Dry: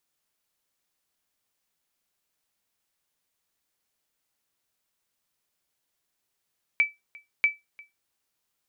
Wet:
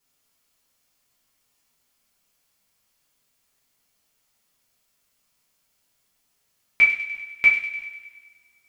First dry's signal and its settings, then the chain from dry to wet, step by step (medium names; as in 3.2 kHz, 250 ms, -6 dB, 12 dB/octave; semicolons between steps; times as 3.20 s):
sonar ping 2.31 kHz, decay 0.19 s, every 0.64 s, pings 2, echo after 0.35 s, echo -25 dB -13 dBFS
bass shelf 190 Hz +5 dB; on a send: feedback echo behind a high-pass 99 ms, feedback 61%, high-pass 2 kHz, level -8.5 dB; on the sum: two-slope reverb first 0.4 s, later 1.7 s, from -19 dB, DRR -7.5 dB